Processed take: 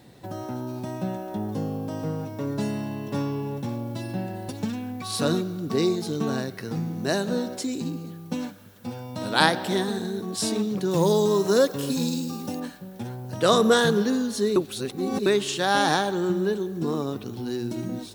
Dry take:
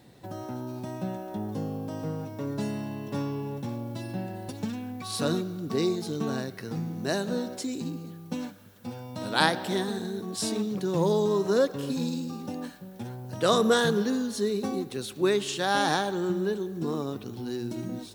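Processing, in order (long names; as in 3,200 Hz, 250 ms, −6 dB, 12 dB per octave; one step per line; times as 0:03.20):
0:10.91–0:12.60: high-shelf EQ 5,200 Hz +9.5 dB
0:14.56–0:15.26: reverse
level +3.5 dB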